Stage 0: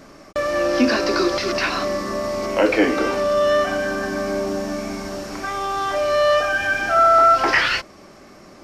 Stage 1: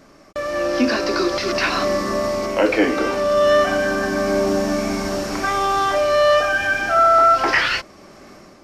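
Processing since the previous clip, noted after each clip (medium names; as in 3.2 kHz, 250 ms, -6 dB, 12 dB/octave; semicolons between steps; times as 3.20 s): level rider gain up to 11.5 dB; trim -4.5 dB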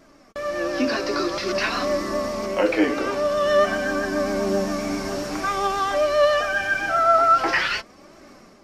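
vibrato 7.5 Hz 32 cents; flange 0.49 Hz, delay 2.9 ms, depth 4.7 ms, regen +53%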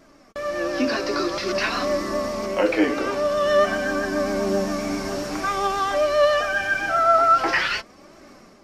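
no audible change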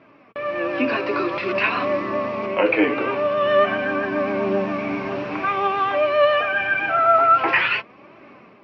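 cabinet simulation 120–3200 Hz, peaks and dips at 120 Hz +9 dB, 440 Hz +3 dB, 1 kHz +6 dB, 2.5 kHz +10 dB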